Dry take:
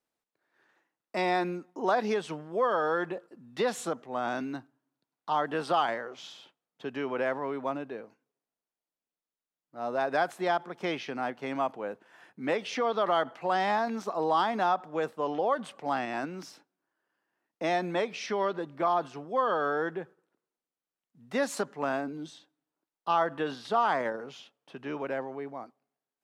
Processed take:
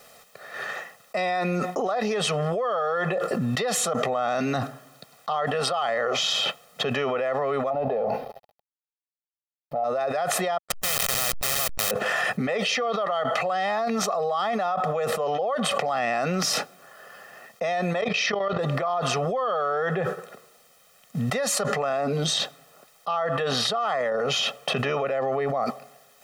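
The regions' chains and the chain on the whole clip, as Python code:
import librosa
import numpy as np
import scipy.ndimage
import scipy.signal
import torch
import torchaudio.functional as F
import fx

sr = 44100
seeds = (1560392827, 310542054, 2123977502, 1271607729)

y = fx.chain(x, sr, fx.law_mismatch(coded='mu'),
    fx.curve_eq(hz=(380.0, 850.0, 1200.0, 4700.0, 7500.0, 11000.0), db=(0, 11, -9, -11, -30, -18)), at=(7.7, 9.84))
y = fx.chain(y, sr, fx.delta_hold(step_db=-31.0),
    fx.spectral_comp(ratio=4.0), at=(10.58, 11.91))
y = fx.chain(y, sr, fx.lowpass(hz=5500.0, slope=12),
    fx.level_steps(step_db=14), at=(18.01, 18.59))
y = fx.low_shelf(y, sr, hz=88.0, db=-10.5)
y = y + 0.95 * np.pad(y, (int(1.6 * sr / 1000.0), 0))[:len(y)]
y = fx.env_flatten(y, sr, amount_pct=100)
y = y * 10.0 ** (-6.5 / 20.0)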